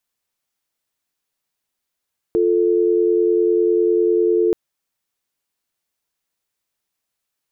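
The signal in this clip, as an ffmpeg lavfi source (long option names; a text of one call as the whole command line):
ffmpeg -f lavfi -i "aevalsrc='0.158*(sin(2*PI*350*t)+sin(2*PI*440*t))':duration=2.18:sample_rate=44100" out.wav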